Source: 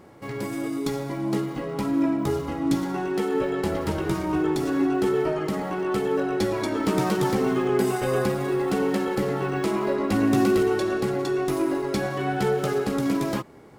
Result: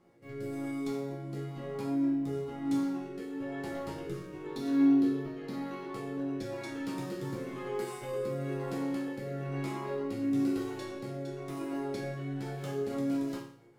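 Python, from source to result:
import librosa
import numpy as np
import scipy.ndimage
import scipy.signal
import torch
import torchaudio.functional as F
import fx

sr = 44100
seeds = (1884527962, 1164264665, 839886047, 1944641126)

y = fx.graphic_eq_31(x, sr, hz=(250, 4000, 8000), db=(12, 8, -5), at=(4.46, 5.93))
y = fx.rotary_switch(y, sr, hz=1.0, then_hz=6.7, switch_at_s=12.4)
y = fx.resonator_bank(y, sr, root=46, chord='minor', decay_s=0.53)
y = y * librosa.db_to_amplitude(6.0)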